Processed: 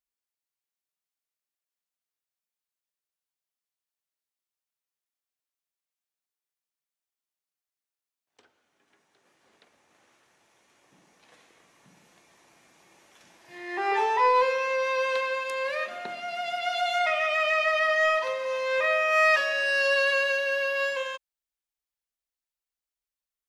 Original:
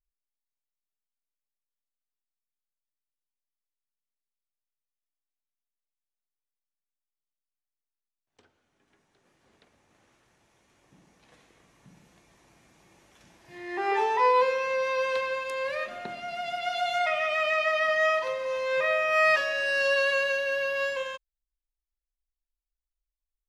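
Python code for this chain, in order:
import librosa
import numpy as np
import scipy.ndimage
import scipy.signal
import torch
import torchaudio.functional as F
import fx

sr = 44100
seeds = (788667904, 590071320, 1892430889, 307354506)

p1 = fx.highpass(x, sr, hz=430.0, slope=6)
p2 = 10.0 ** (-24.5 / 20.0) * np.tanh(p1 / 10.0 ** (-24.5 / 20.0))
y = p1 + F.gain(torch.from_numpy(p2), -8.0).numpy()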